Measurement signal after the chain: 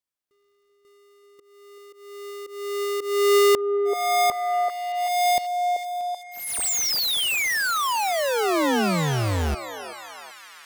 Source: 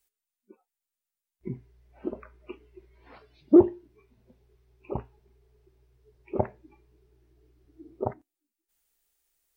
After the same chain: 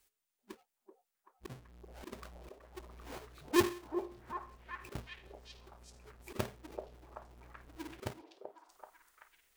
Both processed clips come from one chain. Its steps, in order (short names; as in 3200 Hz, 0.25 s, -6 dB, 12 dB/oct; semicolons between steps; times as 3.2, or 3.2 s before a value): half-waves squared off; auto swell 0.362 s; delay with a stepping band-pass 0.383 s, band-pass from 570 Hz, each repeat 0.7 oct, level -2 dB